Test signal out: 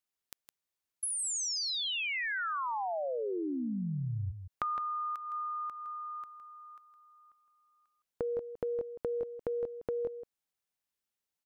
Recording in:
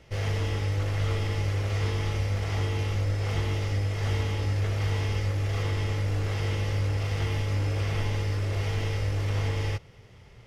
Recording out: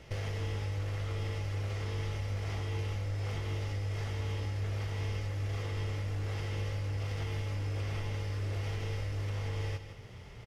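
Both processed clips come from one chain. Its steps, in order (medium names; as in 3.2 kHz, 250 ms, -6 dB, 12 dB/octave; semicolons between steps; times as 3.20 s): compression 6:1, threshold -36 dBFS; on a send: delay 162 ms -9.5 dB; on the sum: trim +2 dB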